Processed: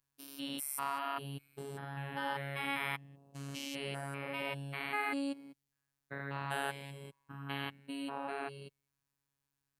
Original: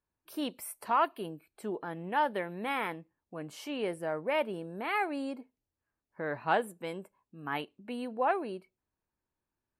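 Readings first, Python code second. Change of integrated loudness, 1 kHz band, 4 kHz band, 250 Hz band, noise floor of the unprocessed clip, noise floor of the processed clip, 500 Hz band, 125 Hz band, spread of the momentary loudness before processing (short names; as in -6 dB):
-5.5 dB, -7.5 dB, +1.0 dB, -4.5 dB, under -85 dBFS, under -85 dBFS, -10.0 dB, +3.5 dB, 14 LU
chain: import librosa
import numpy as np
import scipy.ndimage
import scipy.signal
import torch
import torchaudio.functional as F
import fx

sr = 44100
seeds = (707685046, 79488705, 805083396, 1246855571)

y = fx.spec_steps(x, sr, hold_ms=200)
y = fx.low_shelf(y, sr, hz=320.0, db=7.0)
y = fx.robotise(y, sr, hz=139.0)
y = fx.tone_stack(y, sr, knobs='5-5-5')
y = y * 10.0 ** (15.5 / 20.0)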